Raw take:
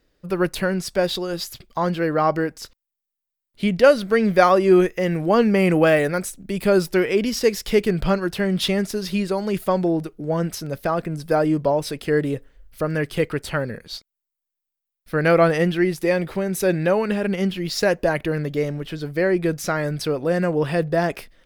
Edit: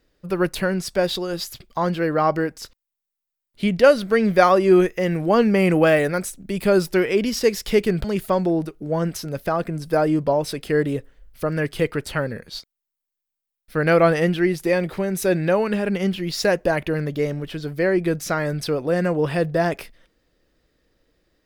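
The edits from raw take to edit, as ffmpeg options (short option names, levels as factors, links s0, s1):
-filter_complex "[0:a]asplit=2[s0][s1];[s0]atrim=end=8.042[s2];[s1]atrim=start=9.418[s3];[s2][s3]acrossfade=d=0.004:c1=hsin:c2=hsin"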